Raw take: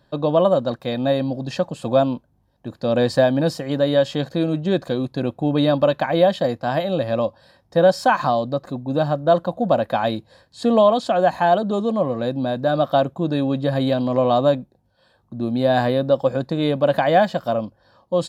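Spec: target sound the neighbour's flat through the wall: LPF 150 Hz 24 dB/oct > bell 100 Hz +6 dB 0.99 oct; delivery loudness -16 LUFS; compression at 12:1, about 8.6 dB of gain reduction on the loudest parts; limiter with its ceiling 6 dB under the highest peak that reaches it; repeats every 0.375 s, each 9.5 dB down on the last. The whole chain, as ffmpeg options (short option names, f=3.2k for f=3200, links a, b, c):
-af "acompressor=threshold=-19dB:ratio=12,alimiter=limit=-16dB:level=0:latency=1,lowpass=f=150:w=0.5412,lowpass=f=150:w=1.3066,equalizer=f=100:t=o:w=0.99:g=6,aecho=1:1:375|750|1125|1500:0.335|0.111|0.0365|0.012,volume=19dB"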